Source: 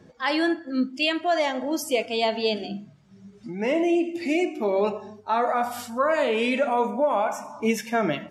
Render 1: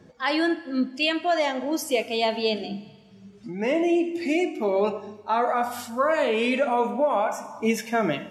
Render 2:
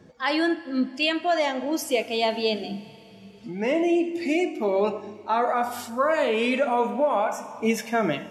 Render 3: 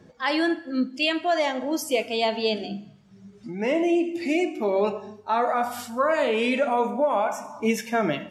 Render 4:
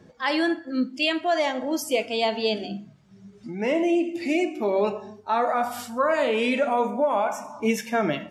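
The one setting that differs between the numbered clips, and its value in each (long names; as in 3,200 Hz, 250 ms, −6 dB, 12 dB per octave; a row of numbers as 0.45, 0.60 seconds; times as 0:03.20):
four-comb reverb, RT60: 1.8, 4.2, 0.82, 0.32 seconds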